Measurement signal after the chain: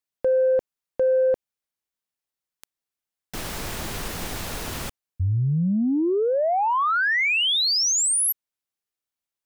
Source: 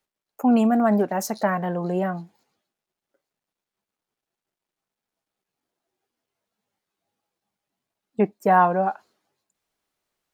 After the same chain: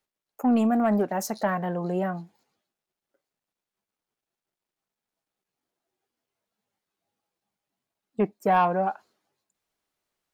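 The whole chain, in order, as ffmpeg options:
ffmpeg -i in.wav -af "asoftclip=type=tanh:threshold=-9.5dB,volume=-2.5dB" out.wav

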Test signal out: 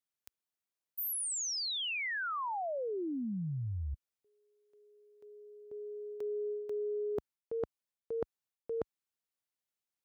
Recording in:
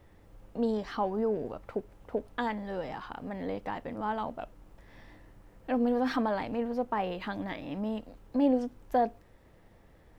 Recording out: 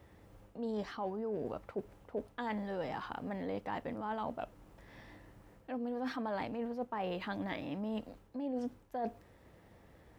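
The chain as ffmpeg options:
ffmpeg -i in.wav -af "highpass=56,areverse,acompressor=threshold=-34dB:ratio=16,areverse" out.wav

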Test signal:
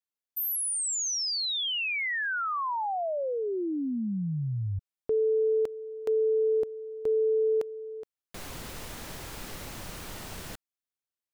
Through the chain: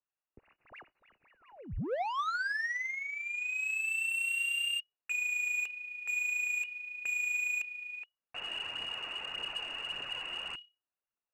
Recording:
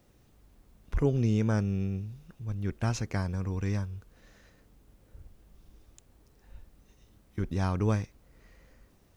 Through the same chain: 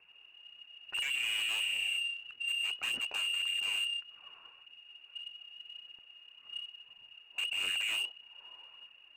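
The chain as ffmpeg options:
ffmpeg -i in.wav -af "equalizer=frequency=620:width_type=o:width=1.5:gain=-12.5,aeval=exprs='0.0355*(abs(mod(val(0)/0.0355+3,4)-2)-1)':channel_layout=same,lowpass=frequency=2500:width_type=q:width=0.5098,lowpass=frequency=2500:width_type=q:width=0.6013,lowpass=frequency=2500:width_type=q:width=0.9,lowpass=frequency=2500:width_type=q:width=2.563,afreqshift=-2900,asoftclip=type=tanh:threshold=-35.5dB,aphaser=in_gain=1:out_gain=1:delay=3.3:decay=0.37:speed=1.7:type=triangular,volume=4dB" out.wav

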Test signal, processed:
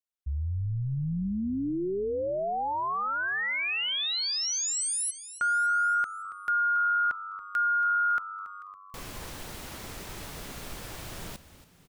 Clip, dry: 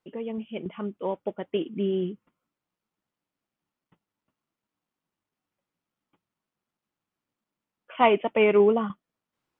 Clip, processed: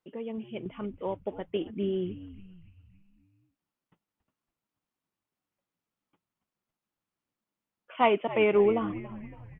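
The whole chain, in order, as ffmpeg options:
ffmpeg -i in.wav -filter_complex "[0:a]asplit=6[link_01][link_02][link_03][link_04][link_05][link_06];[link_02]adelay=279,afreqshift=-97,volume=-15dB[link_07];[link_03]adelay=558,afreqshift=-194,volume=-20.8dB[link_08];[link_04]adelay=837,afreqshift=-291,volume=-26.7dB[link_09];[link_05]adelay=1116,afreqshift=-388,volume=-32.5dB[link_10];[link_06]adelay=1395,afreqshift=-485,volume=-38.4dB[link_11];[link_01][link_07][link_08][link_09][link_10][link_11]amix=inputs=6:normalize=0,volume=-3.5dB" out.wav

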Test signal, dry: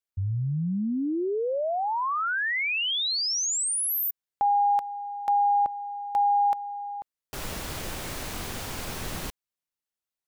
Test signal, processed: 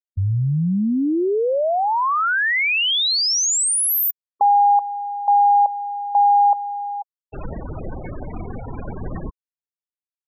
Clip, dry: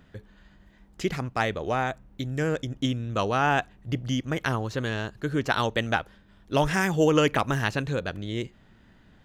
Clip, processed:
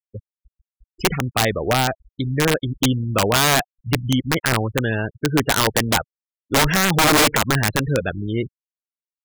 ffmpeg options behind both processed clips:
ffmpeg -i in.wav -af "afftfilt=real='re*gte(hypot(re,im),0.0355)':imag='im*gte(hypot(re,im),0.0355)':win_size=1024:overlap=0.75,aeval=exprs='(mod(7.5*val(0)+1,2)-1)/7.5':channel_layout=same,volume=8dB" out.wav

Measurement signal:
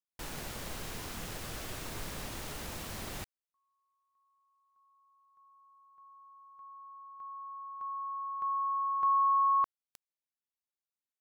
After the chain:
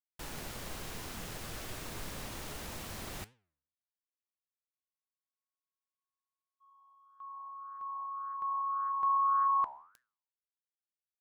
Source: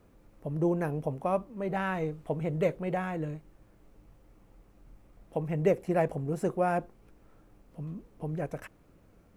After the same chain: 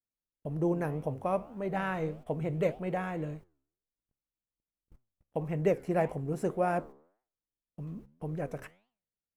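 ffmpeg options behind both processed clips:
ffmpeg -i in.wav -af "agate=range=-42dB:threshold=-49dB:ratio=16:release=93:detection=rms,flanger=delay=7.5:depth=7.8:regen=87:speed=1.8:shape=triangular,volume=3dB" out.wav

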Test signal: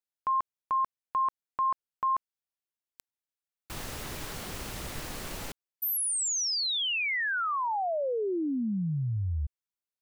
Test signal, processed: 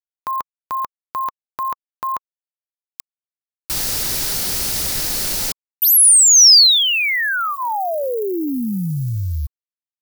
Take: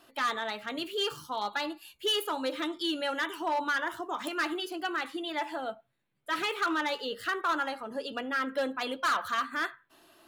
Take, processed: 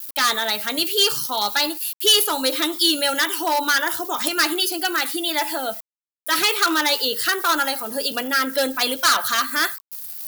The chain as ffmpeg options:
ffmpeg -i in.wav -filter_complex "[0:a]aeval=exprs='val(0)*gte(abs(val(0)),0.00178)':channel_layout=same,aemphasis=mode=production:type=75fm,bandreject=frequency=1100:width=9.6,aexciter=amount=1.6:drive=7:freq=4200,acrossover=split=8300[link_01][link_02];[link_02]acompressor=threshold=-33dB:ratio=4:attack=1:release=60[link_03];[link_01][link_03]amix=inputs=2:normalize=0,volume=9dB" out.wav

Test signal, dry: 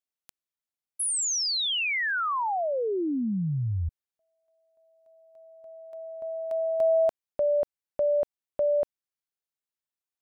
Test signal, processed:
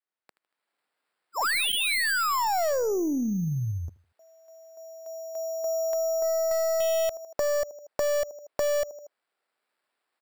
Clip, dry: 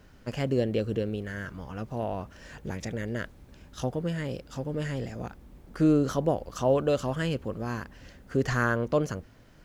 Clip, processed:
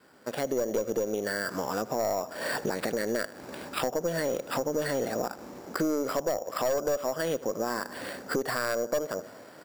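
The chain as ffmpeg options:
ffmpeg -i in.wav -af "highpass=360,adynamicequalizer=threshold=0.0112:dfrequency=620:dqfactor=2.6:tfrequency=620:tqfactor=2.6:attack=5:release=100:ratio=0.438:range=3.5:mode=boostabove:tftype=bell,aecho=1:1:78|156|234:0.0841|0.0294|0.0103,aresample=11025,aresample=44100,dynaudnorm=framelen=370:gausssize=3:maxgain=16dB,equalizer=frequency=2700:width=1.6:gain=-8,aeval=exprs='0.891*(cos(1*acos(clip(val(0)/0.891,-1,1)))-cos(1*PI/2))+0.0891*(cos(4*acos(clip(val(0)/0.891,-1,1)))-cos(4*PI/2))+0.112*(cos(5*acos(clip(val(0)/0.891,-1,1)))-cos(5*PI/2))':channel_layout=same,acompressor=threshold=-25dB:ratio=6:attack=5.1:release=205:knee=1:detection=rms,acrusher=samples=7:mix=1:aa=0.000001" out.wav

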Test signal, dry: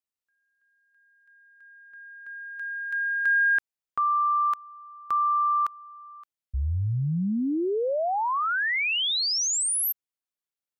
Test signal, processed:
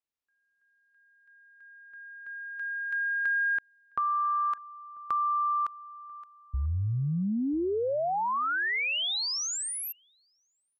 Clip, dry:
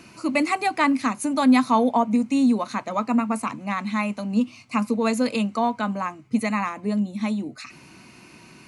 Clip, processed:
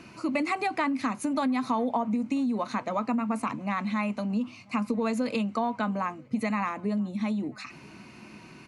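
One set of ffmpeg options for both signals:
ffmpeg -i in.wav -filter_complex "[0:a]lowpass=frequency=3500:poles=1,acompressor=threshold=-27dB:ratio=6:attack=23:release=74:knee=6:detection=peak,asplit=2[link_01][link_02];[link_02]adelay=991.3,volume=-26dB,highshelf=frequency=4000:gain=-22.3[link_03];[link_01][link_03]amix=inputs=2:normalize=0" out.wav

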